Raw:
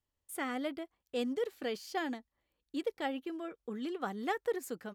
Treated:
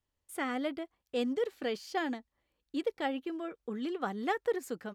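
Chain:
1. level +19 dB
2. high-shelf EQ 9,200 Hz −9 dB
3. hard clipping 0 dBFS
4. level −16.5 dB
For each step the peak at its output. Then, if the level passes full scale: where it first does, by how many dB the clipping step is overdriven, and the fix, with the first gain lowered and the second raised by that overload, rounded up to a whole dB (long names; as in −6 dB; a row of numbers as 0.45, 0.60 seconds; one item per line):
−3.0, −3.0, −3.0, −19.5 dBFS
no step passes full scale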